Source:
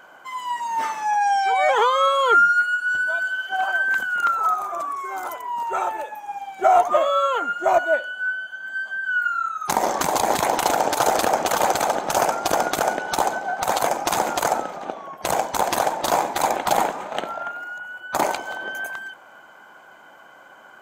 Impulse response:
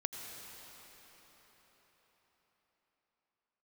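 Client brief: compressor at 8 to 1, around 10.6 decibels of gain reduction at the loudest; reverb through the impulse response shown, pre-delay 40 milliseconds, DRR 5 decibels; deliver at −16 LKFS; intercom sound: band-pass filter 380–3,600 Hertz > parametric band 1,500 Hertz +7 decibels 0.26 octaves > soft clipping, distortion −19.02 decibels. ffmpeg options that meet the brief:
-filter_complex "[0:a]acompressor=threshold=-23dB:ratio=8,asplit=2[link_01][link_02];[1:a]atrim=start_sample=2205,adelay=40[link_03];[link_02][link_03]afir=irnorm=-1:irlink=0,volume=-6dB[link_04];[link_01][link_04]amix=inputs=2:normalize=0,highpass=380,lowpass=3600,equalizer=frequency=1500:width_type=o:width=0.26:gain=7,asoftclip=threshold=-14.5dB,volume=8.5dB"

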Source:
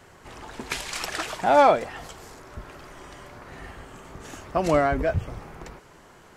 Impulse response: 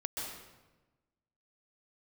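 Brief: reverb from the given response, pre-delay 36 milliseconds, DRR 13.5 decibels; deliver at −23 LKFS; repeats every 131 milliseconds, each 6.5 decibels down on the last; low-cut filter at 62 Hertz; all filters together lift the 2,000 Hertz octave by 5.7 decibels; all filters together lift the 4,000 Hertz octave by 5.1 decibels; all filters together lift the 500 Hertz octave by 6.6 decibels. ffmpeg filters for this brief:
-filter_complex "[0:a]highpass=62,equalizer=frequency=500:width_type=o:gain=8,equalizer=frequency=2000:width_type=o:gain=6,equalizer=frequency=4000:width_type=o:gain=4.5,aecho=1:1:131|262|393|524|655|786:0.473|0.222|0.105|0.0491|0.0231|0.0109,asplit=2[link_01][link_02];[1:a]atrim=start_sample=2205,adelay=36[link_03];[link_02][link_03]afir=irnorm=-1:irlink=0,volume=-16dB[link_04];[link_01][link_04]amix=inputs=2:normalize=0,volume=-5.5dB"

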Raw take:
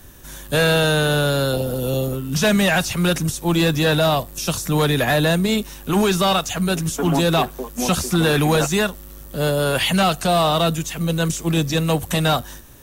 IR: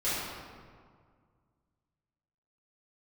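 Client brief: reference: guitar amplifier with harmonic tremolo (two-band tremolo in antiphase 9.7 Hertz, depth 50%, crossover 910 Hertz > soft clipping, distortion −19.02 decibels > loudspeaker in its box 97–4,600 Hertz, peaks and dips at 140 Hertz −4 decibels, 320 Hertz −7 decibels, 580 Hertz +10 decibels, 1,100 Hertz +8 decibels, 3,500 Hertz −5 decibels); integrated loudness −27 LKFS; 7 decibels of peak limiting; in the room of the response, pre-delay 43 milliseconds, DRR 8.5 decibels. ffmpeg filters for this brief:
-filter_complex "[0:a]alimiter=limit=-16.5dB:level=0:latency=1,asplit=2[link_01][link_02];[1:a]atrim=start_sample=2205,adelay=43[link_03];[link_02][link_03]afir=irnorm=-1:irlink=0,volume=-18dB[link_04];[link_01][link_04]amix=inputs=2:normalize=0,acrossover=split=910[link_05][link_06];[link_05]aeval=exprs='val(0)*(1-0.5/2+0.5/2*cos(2*PI*9.7*n/s))':channel_layout=same[link_07];[link_06]aeval=exprs='val(0)*(1-0.5/2-0.5/2*cos(2*PI*9.7*n/s))':channel_layout=same[link_08];[link_07][link_08]amix=inputs=2:normalize=0,asoftclip=threshold=-18.5dB,highpass=97,equalizer=frequency=140:width_type=q:width=4:gain=-4,equalizer=frequency=320:width_type=q:width=4:gain=-7,equalizer=frequency=580:width_type=q:width=4:gain=10,equalizer=frequency=1100:width_type=q:width=4:gain=8,equalizer=frequency=3500:width_type=q:width=4:gain=-5,lowpass=frequency=4600:width=0.5412,lowpass=frequency=4600:width=1.3066,volume=-1dB"

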